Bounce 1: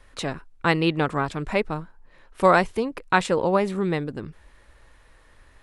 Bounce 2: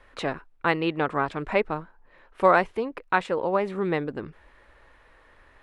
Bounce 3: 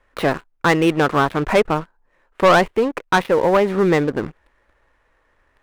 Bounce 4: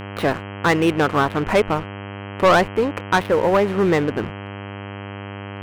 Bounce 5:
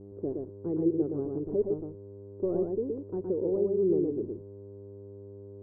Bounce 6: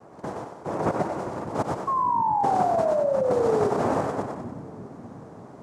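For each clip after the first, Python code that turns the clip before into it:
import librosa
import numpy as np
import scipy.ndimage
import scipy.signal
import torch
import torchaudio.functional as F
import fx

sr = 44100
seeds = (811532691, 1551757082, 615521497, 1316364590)

y1 = fx.bass_treble(x, sr, bass_db=-8, treble_db=-14)
y1 = fx.rider(y1, sr, range_db=4, speed_s=0.5)
y1 = F.gain(torch.from_numpy(y1), -1.5).numpy()
y2 = scipy.ndimage.median_filter(y1, 9, mode='constant')
y2 = fx.leveller(y2, sr, passes=3)
y3 = fx.dmg_buzz(y2, sr, base_hz=100.0, harmonics=32, level_db=-31.0, tilt_db=-4, odd_only=False)
y3 = F.gain(torch.from_numpy(y3), -1.5).numpy()
y4 = fx.ladder_lowpass(y3, sr, hz=420.0, resonance_pct=65)
y4 = y4 + 10.0 ** (-3.5 / 20.0) * np.pad(y4, (int(118 * sr / 1000.0), 0))[:len(y4)]
y4 = F.gain(torch.from_numpy(y4), -6.0).numpy()
y5 = fx.noise_vocoder(y4, sr, seeds[0], bands=2)
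y5 = fx.spec_paint(y5, sr, seeds[1], shape='fall', start_s=1.87, length_s=1.83, low_hz=400.0, high_hz=1100.0, level_db=-24.0)
y5 = fx.echo_split(y5, sr, split_hz=300.0, low_ms=595, high_ms=94, feedback_pct=52, wet_db=-6.5)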